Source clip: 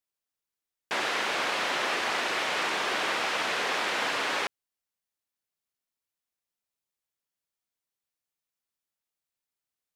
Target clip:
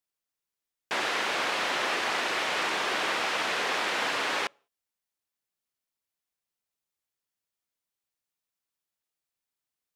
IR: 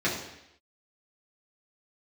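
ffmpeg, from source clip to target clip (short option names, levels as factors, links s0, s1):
-filter_complex "[0:a]asplit=2[s0][s1];[1:a]atrim=start_sample=2205,afade=t=out:st=0.39:d=0.01,atrim=end_sample=17640,asetrate=70560,aresample=44100[s2];[s1][s2]afir=irnorm=-1:irlink=0,volume=0.0178[s3];[s0][s3]amix=inputs=2:normalize=0"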